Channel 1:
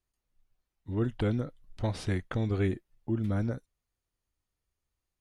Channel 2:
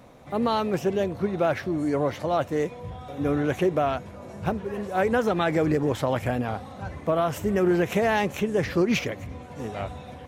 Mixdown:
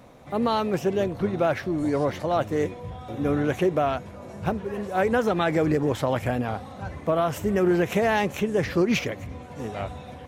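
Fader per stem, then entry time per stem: -8.5 dB, +0.5 dB; 0.00 s, 0.00 s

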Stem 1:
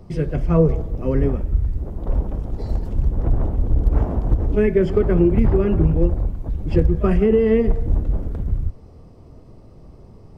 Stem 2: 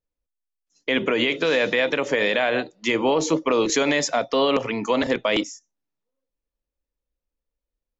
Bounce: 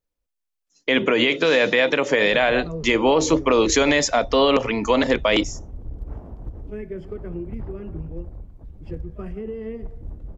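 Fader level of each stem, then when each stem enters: -16.0 dB, +3.0 dB; 2.15 s, 0.00 s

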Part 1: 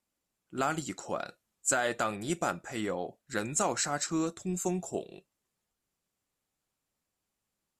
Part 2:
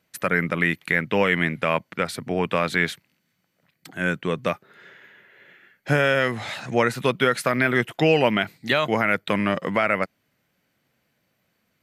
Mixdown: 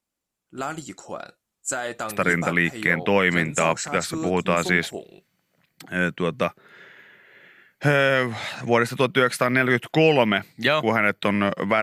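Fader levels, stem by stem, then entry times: +0.5 dB, +1.0 dB; 0.00 s, 1.95 s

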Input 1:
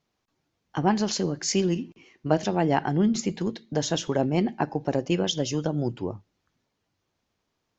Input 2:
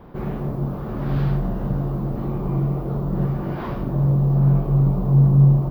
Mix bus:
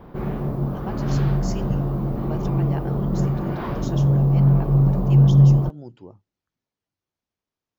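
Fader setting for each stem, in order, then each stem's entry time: -12.0 dB, +0.5 dB; 0.00 s, 0.00 s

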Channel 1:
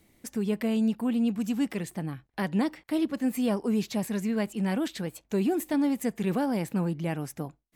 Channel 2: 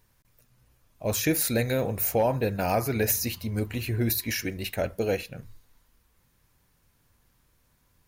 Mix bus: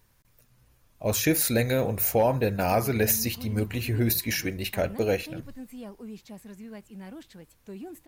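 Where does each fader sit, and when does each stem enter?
-14.5 dB, +1.5 dB; 2.35 s, 0.00 s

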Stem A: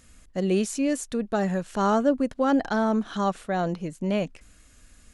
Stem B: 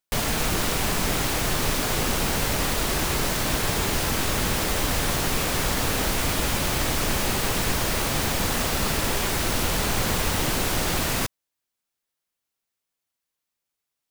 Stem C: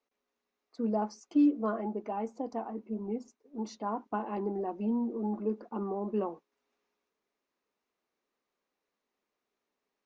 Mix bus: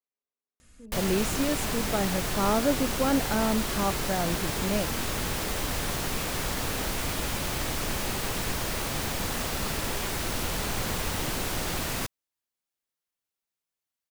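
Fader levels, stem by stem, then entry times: -3.5 dB, -6.0 dB, -16.0 dB; 0.60 s, 0.80 s, 0.00 s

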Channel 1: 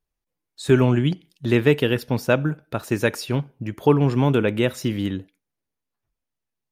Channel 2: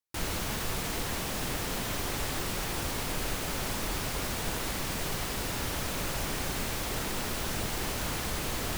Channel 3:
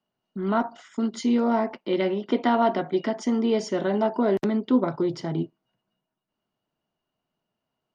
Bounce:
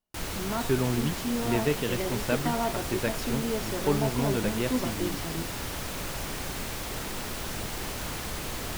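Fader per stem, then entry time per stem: -10.0 dB, -1.5 dB, -8.5 dB; 0.00 s, 0.00 s, 0.00 s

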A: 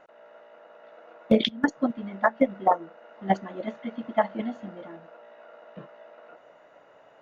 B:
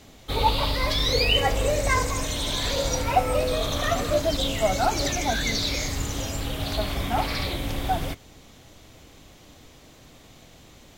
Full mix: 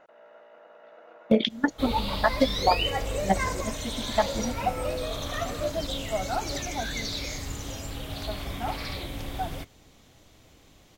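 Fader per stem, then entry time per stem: -1.0 dB, -6.5 dB; 0.00 s, 1.50 s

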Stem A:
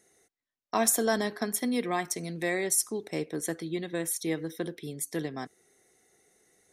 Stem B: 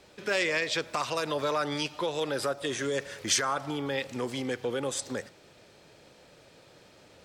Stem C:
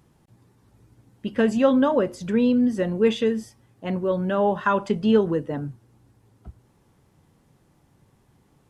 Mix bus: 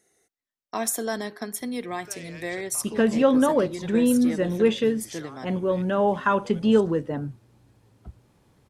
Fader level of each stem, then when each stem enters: -2.0 dB, -16.5 dB, -0.5 dB; 0.00 s, 1.80 s, 1.60 s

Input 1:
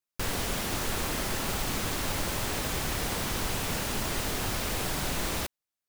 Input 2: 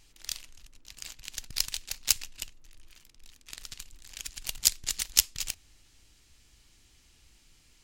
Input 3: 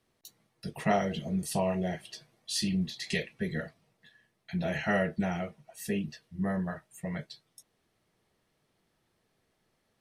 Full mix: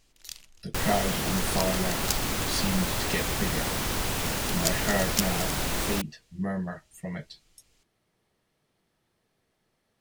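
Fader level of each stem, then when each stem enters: +2.0 dB, -5.5 dB, +0.5 dB; 0.55 s, 0.00 s, 0.00 s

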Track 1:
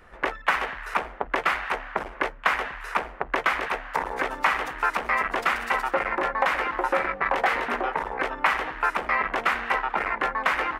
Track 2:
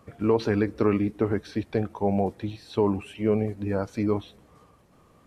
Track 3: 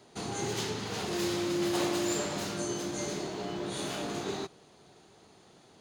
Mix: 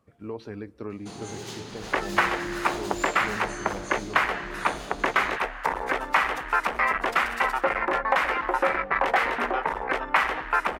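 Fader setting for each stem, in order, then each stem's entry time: +0.5 dB, -13.5 dB, -4.0 dB; 1.70 s, 0.00 s, 0.90 s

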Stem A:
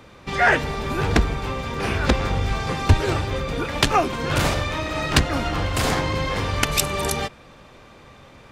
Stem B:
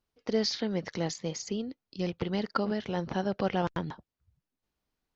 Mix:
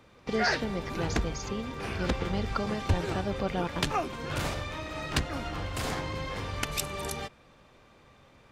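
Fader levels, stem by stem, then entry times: -11.0 dB, -2.5 dB; 0.00 s, 0.00 s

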